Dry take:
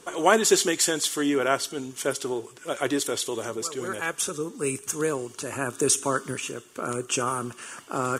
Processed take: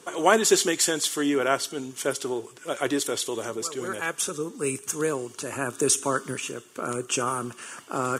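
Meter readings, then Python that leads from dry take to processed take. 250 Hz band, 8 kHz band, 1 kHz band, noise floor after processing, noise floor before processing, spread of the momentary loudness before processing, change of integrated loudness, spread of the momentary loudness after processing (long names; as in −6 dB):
0.0 dB, 0.0 dB, 0.0 dB, −50 dBFS, −50 dBFS, 12 LU, 0.0 dB, 12 LU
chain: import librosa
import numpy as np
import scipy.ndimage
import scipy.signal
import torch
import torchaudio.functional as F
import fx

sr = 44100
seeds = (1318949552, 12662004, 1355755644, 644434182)

y = scipy.signal.sosfilt(scipy.signal.butter(2, 94.0, 'highpass', fs=sr, output='sos'), x)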